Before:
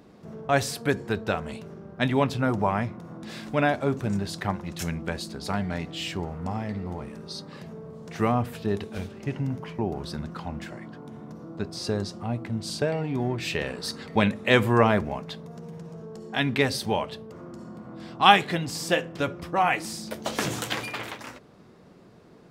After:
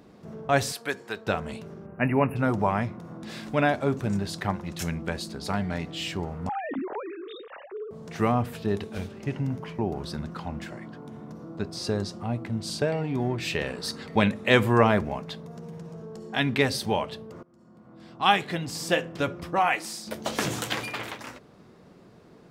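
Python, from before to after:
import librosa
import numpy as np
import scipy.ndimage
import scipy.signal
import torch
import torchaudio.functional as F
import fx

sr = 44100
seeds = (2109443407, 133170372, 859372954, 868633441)

y = fx.highpass(x, sr, hz=880.0, slope=6, at=(0.72, 1.27))
y = fx.spec_erase(y, sr, start_s=1.86, length_s=0.5, low_hz=2900.0, high_hz=9200.0)
y = fx.sine_speech(y, sr, at=(6.49, 7.91))
y = fx.highpass(y, sr, hz=fx.line((19.59, 310.0), (20.06, 700.0)), slope=6, at=(19.59, 20.06), fade=0.02)
y = fx.edit(y, sr, fx.fade_in_from(start_s=17.43, length_s=1.59, floor_db=-23.5), tone=tone)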